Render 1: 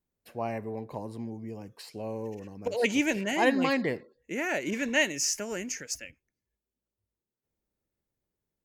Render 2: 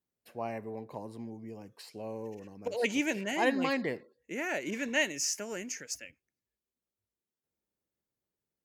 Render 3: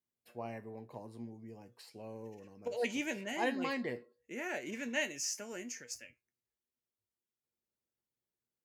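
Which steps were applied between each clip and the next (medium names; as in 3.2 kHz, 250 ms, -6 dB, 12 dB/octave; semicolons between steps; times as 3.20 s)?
high-pass 130 Hz 6 dB/octave; trim -3.5 dB
feedback comb 120 Hz, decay 0.18 s, harmonics all, mix 70%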